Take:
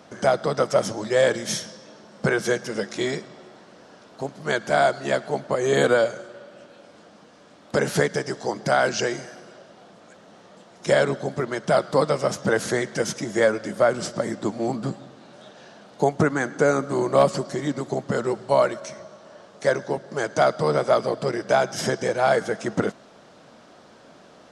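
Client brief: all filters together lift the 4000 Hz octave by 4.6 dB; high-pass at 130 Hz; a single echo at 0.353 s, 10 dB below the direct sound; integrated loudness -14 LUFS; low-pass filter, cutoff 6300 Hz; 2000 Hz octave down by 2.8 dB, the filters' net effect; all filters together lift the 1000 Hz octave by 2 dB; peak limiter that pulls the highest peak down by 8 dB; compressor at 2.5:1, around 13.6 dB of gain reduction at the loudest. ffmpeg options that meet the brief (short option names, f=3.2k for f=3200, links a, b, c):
-af "highpass=130,lowpass=6.3k,equalizer=f=1k:t=o:g=4.5,equalizer=f=2k:t=o:g=-8,equalizer=f=4k:t=o:g=9,acompressor=threshold=-34dB:ratio=2.5,alimiter=level_in=1dB:limit=-24dB:level=0:latency=1,volume=-1dB,aecho=1:1:353:0.316,volume=22.5dB"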